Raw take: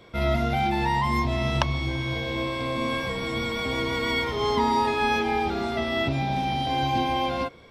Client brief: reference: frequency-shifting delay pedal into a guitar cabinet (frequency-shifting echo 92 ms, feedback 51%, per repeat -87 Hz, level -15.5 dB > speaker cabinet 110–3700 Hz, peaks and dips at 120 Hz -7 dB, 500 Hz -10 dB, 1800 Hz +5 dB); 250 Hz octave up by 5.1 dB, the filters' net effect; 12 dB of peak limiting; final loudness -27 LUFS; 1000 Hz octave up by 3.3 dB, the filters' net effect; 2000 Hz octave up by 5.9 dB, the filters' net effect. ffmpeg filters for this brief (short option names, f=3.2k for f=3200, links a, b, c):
-filter_complex "[0:a]equalizer=f=250:t=o:g=7,equalizer=f=1k:t=o:g=3.5,equalizer=f=2k:t=o:g=3.5,alimiter=limit=-16.5dB:level=0:latency=1,asplit=6[a][b][c][d][e][f];[b]adelay=92,afreqshift=-87,volume=-15.5dB[g];[c]adelay=184,afreqshift=-174,volume=-21.3dB[h];[d]adelay=276,afreqshift=-261,volume=-27.2dB[i];[e]adelay=368,afreqshift=-348,volume=-33dB[j];[f]adelay=460,afreqshift=-435,volume=-38.9dB[k];[a][g][h][i][j][k]amix=inputs=6:normalize=0,highpass=110,equalizer=f=120:t=q:w=4:g=-7,equalizer=f=500:t=q:w=4:g=-10,equalizer=f=1.8k:t=q:w=4:g=5,lowpass=f=3.7k:w=0.5412,lowpass=f=3.7k:w=1.3066,volume=-1.5dB"